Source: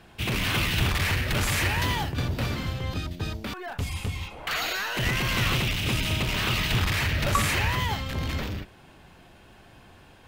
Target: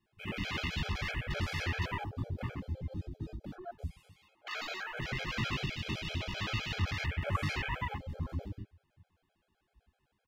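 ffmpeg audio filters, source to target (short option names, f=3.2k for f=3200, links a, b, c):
-filter_complex "[0:a]flanger=delay=18.5:depth=6.7:speed=0.92,asettb=1/sr,asplit=3[a][b][c];[a]atrim=end=3.954[d];[b]atrim=start=3.95:end=4.59,asetpts=PTS-STARTPTS,afade=t=in:d=0.004:c=qsin,afade=t=out:st=0.636:d=0.004:c=qsin,highpass=340[e];[c]atrim=start=4.586[f];[d][e]acrossfade=d=0.004:c1=hsin:c2=qsin[g];[g][f]acrossfade=d=0.004:c1=qsin:c2=hsin,asplit=2[h][i];[i]adelay=393,lowpass=f=1.5k:p=1,volume=-24dB,asplit=2[j][k];[k]adelay=393,lowpass=f=1.5k:p=1,volume=0.5,asplit=2[l][m];[m]adelay=393,lowpass=f=1.5k:p=1,volume=0.5[n];[h][j][l][n]amix=inputs=4:normalize=0,flanger=delay=8.4:depth=7.1:regen=-28:speed=0.45:shape=triangular,afwtdn=0.0112,afftfilt=real='re*gt(sin(2*PI*7.8*pts/sr)*(1-2*mod(floor(b*sr/1024/430),2)),0)':imag='im*gt(sin(2*PI*7.8*pts/sr)*(1-2*mod(floor(b*sr/1024/430),2)),0)':win_size=1024:overlap=0.75"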